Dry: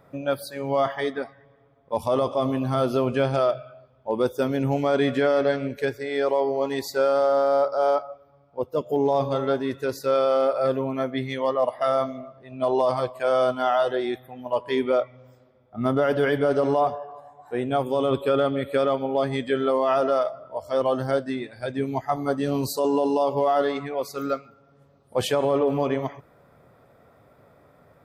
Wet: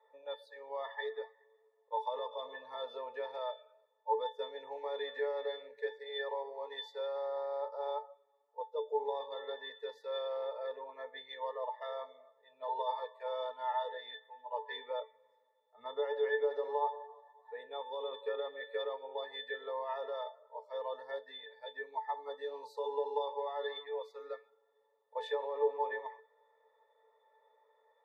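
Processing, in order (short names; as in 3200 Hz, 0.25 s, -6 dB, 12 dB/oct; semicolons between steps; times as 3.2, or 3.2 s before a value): inverse Chebyshev high-pass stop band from 220 Hz, stop band 50 dB; octave resonator A, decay 0.2 s; gain +8.5 dB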